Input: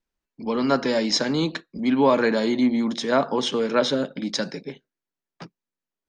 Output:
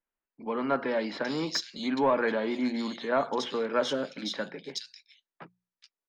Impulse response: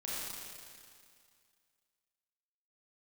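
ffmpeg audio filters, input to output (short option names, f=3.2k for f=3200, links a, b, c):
-filter_complex "[0:a]asplit=2[a][b];[b]highpass=f=720:p=1,volume=10dB,asoftclip=type=tanh:threshold=-6dB[c];[a][c]amix=inputs=2:normalize=0,lowpass=f=3.5k:p=1,volume=-6dB,bandreject=f=60:t=h:w=6,bandreject=f=120:t=h:w=6,bandreject=f=180:t=h:w=6,acrossover=split=2900[d][e];[e]adelay=420[f];[d][f]amix=inputs=2:normalize=0,volume=-7.5dB"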